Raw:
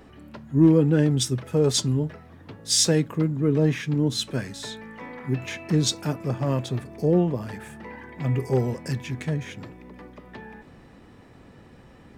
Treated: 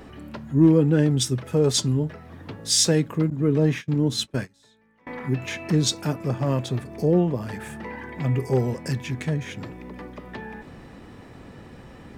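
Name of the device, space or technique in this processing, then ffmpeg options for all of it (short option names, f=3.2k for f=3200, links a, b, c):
parallel compression: -filter_complex "[0:a]asplit=2[a][b];[b]acompressor=threshold=-38dB:ratio=16,volume=-0.5dB[c];[a][c]amix=inputs=2:normalize=0,asettb=1/sr,asplit=3[d][e][f];[d]atrim=end=3.304[g];[e]atrim=start=3.3:end=5.07,asetpts=PTS-STARTPTS,afade=t=in:d=0.004:c=qsin,afade=t=out:st=1.766:d=0.004:c=qsin,agate=range=-26dB:threshold=-27dB:ratio=16:detection=peak[h];[f]atrim=start=5.066[i];[g][h]acrossfade=d=0.004:c1=hsin:c2=qsin[j];[j][i]acrossfade=d=0.004:c1=qsin:c2=hsin"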